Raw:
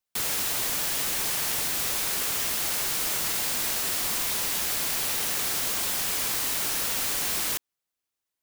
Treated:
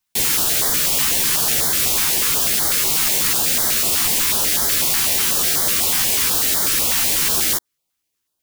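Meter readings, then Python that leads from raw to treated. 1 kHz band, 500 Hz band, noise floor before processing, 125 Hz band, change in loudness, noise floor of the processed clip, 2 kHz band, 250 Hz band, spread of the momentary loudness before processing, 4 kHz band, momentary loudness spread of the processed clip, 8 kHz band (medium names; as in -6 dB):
+7.0 dB, +8.5 dB, under -85 dBFS, +10.5 dB, +10.0 dB, -76 dBFS, +7.5 dB, +10.0 dB, 0 LU, +9.5 dB, 0 LU, +10.0 dB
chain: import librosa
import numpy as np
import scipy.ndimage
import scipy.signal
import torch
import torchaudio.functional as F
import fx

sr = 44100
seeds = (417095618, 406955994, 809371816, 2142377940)

y = fx.doubler(x, sr, ms=13.0, db=-3.0)
y = fx.filter_held_notch(y, sr, hz=8.1, low_hz=520.0, high_hz=2600.0)
y = y * librosa.db_to_amplitude(8.5)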